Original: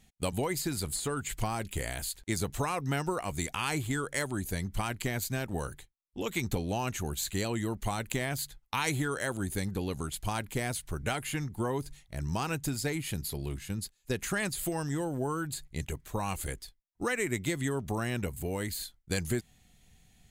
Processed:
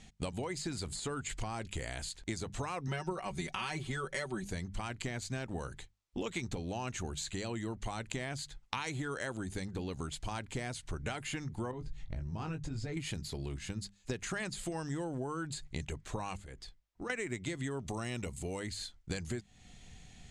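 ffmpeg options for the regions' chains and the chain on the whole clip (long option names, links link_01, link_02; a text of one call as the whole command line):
ffmpeg -i in.wav -filter_complex "[0:a]asettb=1/sr,asplit=3[link_01][link_02][link_03];[link_01]atrim=end=2.874[link_04];[link_02]atrim=start=2.87:end=4.45,asetpts=PTS-STARTPTS,afade=type=in:duration=0.004:curve=qsin,afade=type=out:start_time=1.576:duration=0.004:curve=qsin,equalizer=frequency=7400:width=7.9:gain=-12,aecho=1:1:5.3:0.84,atrim=end_sample=69678[link_05];[link_03]atrim=start=4.446[link_06];[link_04][link_05]acrossfade=duration=0.004:curve1=hsin:curve2=qsin[link_07];[link_07][link_06]acrossfade=duration=0.004:curve1=qsin:curve2=hsin,asettb=1/sr,asplit=3[link_08][link_09][link_10];[link_08]atrim=end=11.714[link_11];[link_09]atrim=start=11.71:end=12.97,asetpts=PTS-STARTPTS,afade=type=in:duration=0.004:curve=qsin,afade=type=out:start_time=1.256:duration=0.004:curve=qsin,aemphasis=mode=reproduction:type=bsi,acompressor=threshold=-38dB:ratio=3:attack=3.2:release=140:knee=1:detection=peak,asplit=2[link_12][link_13];[link_13]adelay=19,volume=-6dB[link_14];[link_12][link_14]amix=inputs=2:normalize=0,atrim=end_sample=55566[link_15];[link_10]atrim=start=12.966[link_16];[link_11][link_15]acrossfade=duration=0.004:curve1=hsin:curve2=qsin[link_17];[link_17][link_16]acrossfade=duration=0.004:curve1=qsin:curve2=hsin,asettb=1/sr,asplit=3[link_18][link_19][link_20];[link_18]atrim=end=16.374[link_21];[link_19]atrim=start=16.37:end=17.1,asetpts=PTS-STARTPTS,afade=type=in:duration=0.004:curve=qsin,afade=type=out:start_time=0.726:duration=0.004:curve=qsin,highshelf=frequency=4200:gain=-7,acompressor=threshold=-54dB:ratio=2.5:attack=3.2:release=140:knee=1:detection=peak[link_22];[link_20]atrim=start=17.096[link_23];[link_21][link_22]acrossfade=duration=0.004:curve1=hsin:curve2=qsin[link_24];[link_24][link_23]acrossfade=duration=0.004:curve1=qsin:curve2=hsin,asettb=1/sr,asplit=3[link_25][link_26][link_27];[link_25]atrim=end=17.814[link_28];[link_26]atrim=start=17.81:end=18.6,asetpts=PTS-STARTPTS,afade=type=in:duration=0.004:curve=qsin,afade=type=out:start_time=0.786:duration=0.004:curve=qsin,highshelf=frequency=4000:gain=9,bandreject=frequency=1600:width=6.7[link_29];[link_27]atrim=start=18.596[link_30];[link_28][link_29]acrossfade=duration=0.004:curve1=hsin:curve2=qsin[link_31];[link_31][link_30]acrossfade=duration=0.004:curve1=qsin:curve2=hsin,acompressor=threshold=-44dB:ratio=5,lowpass=frequency=7900:width=0.5412,lowpass=frequency=7900:width=1.3066,bandreject=frequency=50:width_type=h:width=6,bandreject=frequency=100:width_type=h:width=6,bandreject=frequency=150:width_type=h:width=6,bandreject=frequency=200:width_type=h:width=6,volume=8dB" out.wav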